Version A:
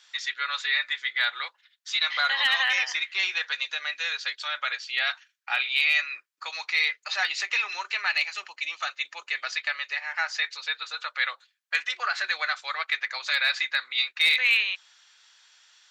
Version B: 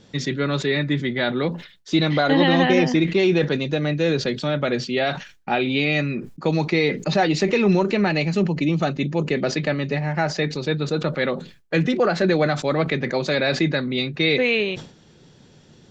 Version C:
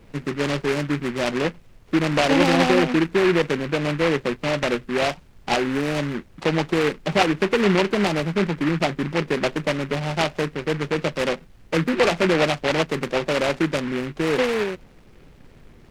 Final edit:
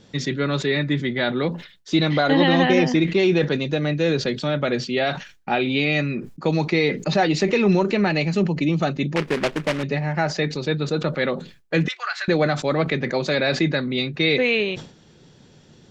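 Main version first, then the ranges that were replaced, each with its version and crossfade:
B
0:09.16–0:09.83: punch in from C
0:11.88–0:12.28: punch in from A

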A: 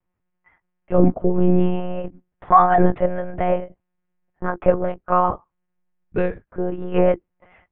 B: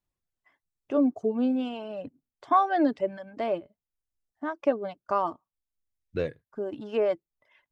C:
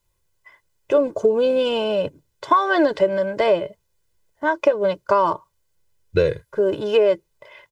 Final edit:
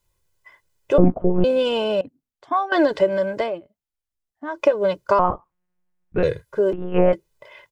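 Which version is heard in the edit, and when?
C
0:00.98–0:01.44: punch in from A
0:02.01–0:02.72: punch in from B
0:03.43–0:04.55: punch in from B, crossfade 0.16 s
0:05.19–0:06.23: punch in from A
0:06.73–0:07.13: punch in from A

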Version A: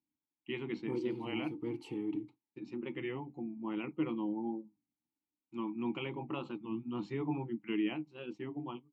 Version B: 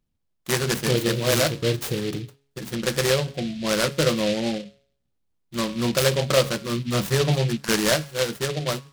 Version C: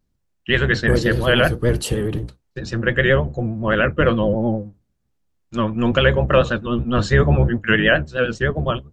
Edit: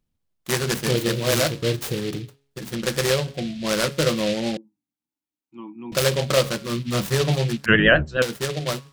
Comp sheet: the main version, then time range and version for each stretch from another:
B
0:04.57–0:05.92: punch in from A
0:07.66–0:08.22: punch in from C

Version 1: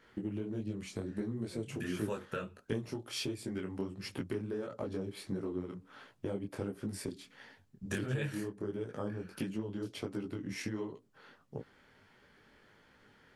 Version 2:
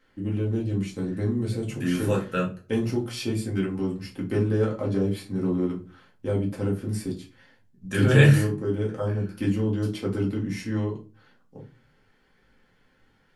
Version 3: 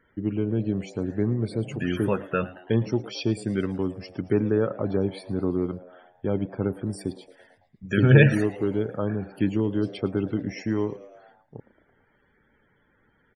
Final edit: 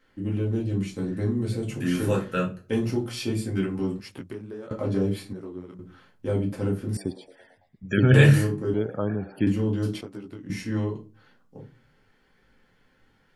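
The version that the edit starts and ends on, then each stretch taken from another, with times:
2
0:04.00–0:04.71: punch in from 1
0:05.33–0:05.79: punch in from 1
0:06.97–0:08.14: punch in from 3
0:08.74–0:09.47: punch in from 3
0:10.01–0:10.50: punch in from 1

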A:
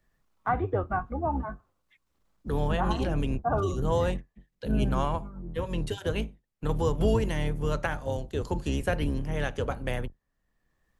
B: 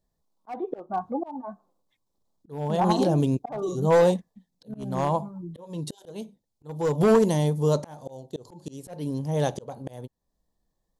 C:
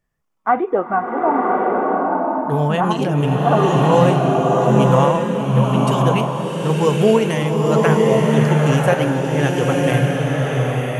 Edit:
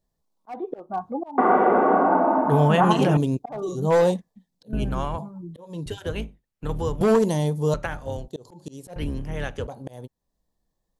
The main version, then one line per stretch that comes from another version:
B
0:01.38–0:03.17: punch in from C
0:04.73–0:05.18: punch in from A
0:05.86–0:07.01: punch in from A
0:07.74–0:08.28: punch in from A
0:08.96–0:09.67: punch in from A

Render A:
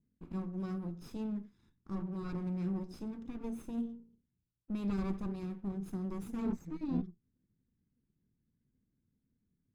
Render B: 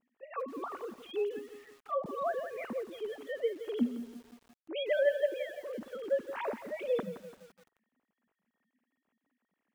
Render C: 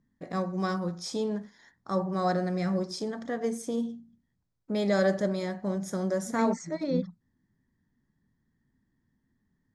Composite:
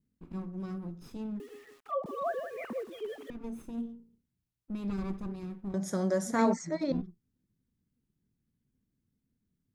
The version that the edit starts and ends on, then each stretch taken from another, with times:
A
0:01.40–0:03.30: punch in from B
0:05.74–0:06.92: punch in from C

